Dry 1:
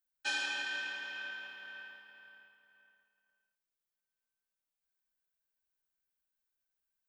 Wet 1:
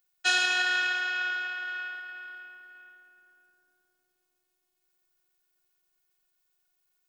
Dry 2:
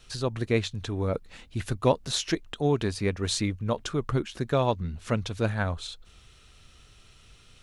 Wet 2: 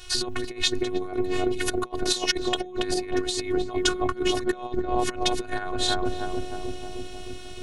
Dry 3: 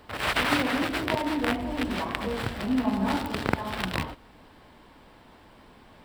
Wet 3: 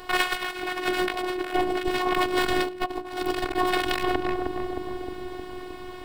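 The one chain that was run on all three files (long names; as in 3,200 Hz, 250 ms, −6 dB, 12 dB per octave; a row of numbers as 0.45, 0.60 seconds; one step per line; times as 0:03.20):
on a send: feedback echo with a low-pass in the loop 310 ms, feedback 77%, low-pass 930 Hz, level −7.5 dB
on the sum: compressor whose output falls as the input rises −31 dBFS, ratio −0.5
low-shelf EQ 210 Hz −4.5 dB
phases set to zero 364 Hz
loudness normalisation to −27 LKFS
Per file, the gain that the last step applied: +13.0, +10.5, +9.5 decibels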